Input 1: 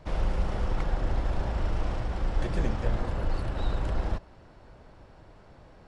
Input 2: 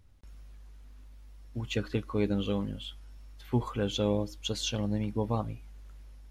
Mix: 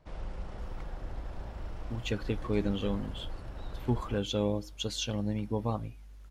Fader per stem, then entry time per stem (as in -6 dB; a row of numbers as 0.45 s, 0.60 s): -12.0 dB, -1.5 dB; 0.00 s, 0.35 s